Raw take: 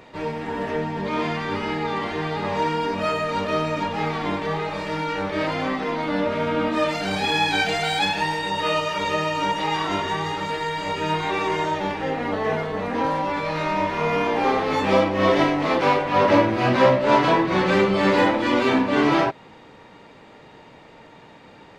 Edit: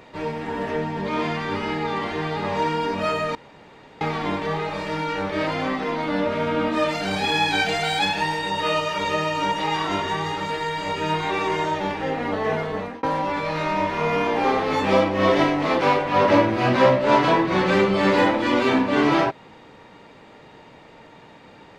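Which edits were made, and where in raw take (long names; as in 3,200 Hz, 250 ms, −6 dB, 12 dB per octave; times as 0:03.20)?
0:03.35–0:04.01: fill with room tone
0:12.76–0:13.03: fade out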